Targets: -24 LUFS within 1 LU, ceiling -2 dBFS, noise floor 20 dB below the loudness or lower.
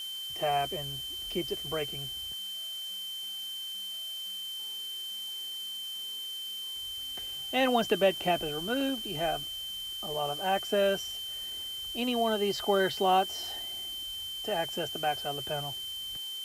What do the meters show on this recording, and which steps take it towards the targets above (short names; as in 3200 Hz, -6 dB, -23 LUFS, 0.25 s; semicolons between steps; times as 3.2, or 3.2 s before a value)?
steady tone 3100 Hz; tone level -36 dBFS; noise floor -39 dBFS; noise floor target -52 dBFS; loudness -31.5 LUFS; peak -13.5 dBFS; loudness target -24.0 LUFS
-> notch 3100 Hz, Q 30; noise print and reduce 13 dB; gain +7.5 dB